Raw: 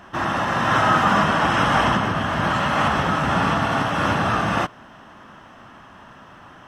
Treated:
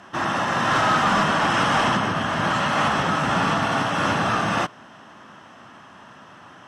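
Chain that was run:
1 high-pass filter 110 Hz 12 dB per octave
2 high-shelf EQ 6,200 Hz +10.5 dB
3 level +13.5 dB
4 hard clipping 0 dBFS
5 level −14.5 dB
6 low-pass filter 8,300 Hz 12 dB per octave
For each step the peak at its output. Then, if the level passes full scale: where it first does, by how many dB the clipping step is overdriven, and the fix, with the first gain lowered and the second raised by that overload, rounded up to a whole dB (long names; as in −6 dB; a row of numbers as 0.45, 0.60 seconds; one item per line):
−5.5, −5.0, +8.5, 0.0, −14.5, −14.0 dBFS
step 3, 8.5 dB
step 3 +4.5 dB, step 5 −5.5 dB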